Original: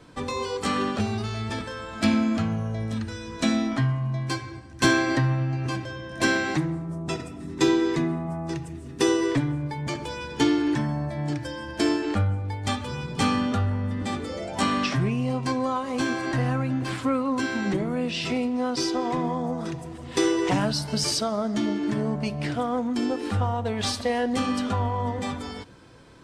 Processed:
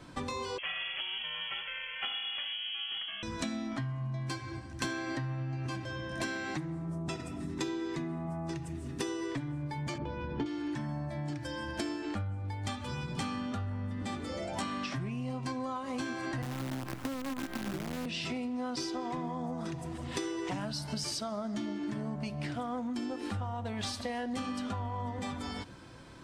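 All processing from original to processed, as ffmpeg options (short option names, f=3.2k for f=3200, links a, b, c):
-filter_complex "[0:a]asettb=1/sr,asplit=3[a][b][c];[a]atrim=end=0.584[d];[b]atrim=start=0.58:end=3.23,asetpts=PTS-STARTPTS,afade=t=in:d=0.004:c=qsin,afade=t=out:st=2.646:d=0.004:c=qsin,equalizer=f=160:t=o:w=1.3:g=-8,aeval=exprs='val(0)*sin(2*PI*280*n/s)':c=same,lowpass=f=2.9k:t=q:w=0.5098,lowpass=f=2.9k:t=q:w=0.6013,lowpass=f=2.9k:t=q:w=0.9,lowpass=f=2.9k:t=q:w=2.563,afreqshift=-3400[e];[c]atrim=start=3.226[f];[d][e]acrossfade=d=0.004:c1=hsin:c2=qsin[g];[g][f]acrossfade=d=0.004:c1=qsin:c2=hsin,asettb=1/sr,asplit=3[h][i][j];[h]atrim=end=9.984[k];[i]atrim=start=9.98:end=10.46,asetpts=PTS-STARTPTS,afade=t=in:d=0.004:c=qsin,afade=t=out:st=0.476:d=0.004:c=qsin,tiltshelf=f=910:g=6,adynamicsmooth=sensitivity=2.5:basefreq=3.4k,lowpass=4.7k[l];[j]atrim=start=10.456[m];[k][l]acrossfade=d=0.004:c1=hsin:c2=qsin[n];[n][m]acrossfade=d=0.004:c1=qsin:c2=hsin,asettb=1/sr,asplit=3[o][p][q];[o]atrim=end=16.424[r];[p]atrim=start=16.42:end=18.06,asetpts=PTS-STARTPTS,afade=t=in:d=0.004:c=qsin,afade=t=out:st=1.636:d=0.004:c=qsin,lowpass=f=1.1k:p=1,acrusher=bits=5:dc=4:mix=0:aa=0.000001,acrossover=split=110|380[s][t][u];[s]acompressor=threshold=-40dB:ratio=4[v];[t]acompressor=threshold=-27dB:ratio=4[w];[u]acompressor=threshold=-31dB:ratio=4[x];[v][w][x]amix=inputs=3:normalize=0[y];[q]atrim=start=18.056[z];[r][y]acrossfade=d=0.004:c1=hsin:c2=qsin[aa];[aa][z]acrossfade=d=0.004:c1=qsin:c2=hsin,equalizer=f=450:t=o:w=0.23:g=-8,acompressor=threshold=-34dB:ratio=6"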